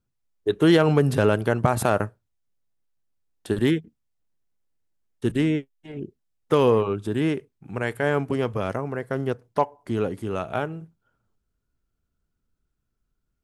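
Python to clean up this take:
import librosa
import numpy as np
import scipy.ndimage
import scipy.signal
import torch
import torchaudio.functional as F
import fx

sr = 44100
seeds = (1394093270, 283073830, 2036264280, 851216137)

y = fx.fix_declip(x, sr, threshold_db=-7.5)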